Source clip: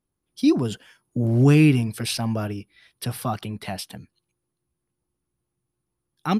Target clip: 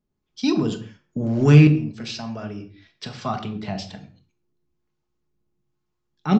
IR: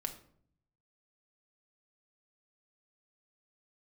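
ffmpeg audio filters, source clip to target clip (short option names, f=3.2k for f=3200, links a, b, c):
-filter_complex "[0:a]aeval=exprs='0.531*(cos(1*acos(clip(val(0)/0.531,-1,1)))-cos(1*PI/2))+0.00841*(cos(7*acos(clip(val(0)/0.531,-1,1)))-cos(7*PI/2))':c=same,aresample=16000,aresample=44100,acrossover=split=640[a][b];[a]aeval=exprs='val(0)*(1-0.5/2+0.5/2*cos(2*PI*1.1*n/s))':c=same[c];[b]aeval=exprs='val(0)*(1-0.5/2-0.5/2*cos(2*PI*1.1*n/s))':c=same[d];[c][d]amix=inputs=2:normalize=0,asettb=1/sr,asplit=3[e][f][g];[e]atrim=end=1.674[h];[f]atrim=start=1.67:end=3.26,asetpts=PTS-STARTPTS,afade=t=in:d=0.004:c=qsin,afade=t=out:st=1.586:d=0.004:c=qsin,acompressor=threshold=-33dB:ratio=6[i];[g]atrim=start=3.256[j];[h][i]acrossfade=d=0.004:c1=hsin:c2=qsin[k];[k][j]acrossfade=d=0.004:c1=qsin:c2=hsin[l];[1:a]atrim=start_sample=2205,afade=t=out:st=0.3:d=0.01,atrim=end_sample=13671[m];[l][m]afir=irnorm=-1:irlink=0,volume=4.5dB"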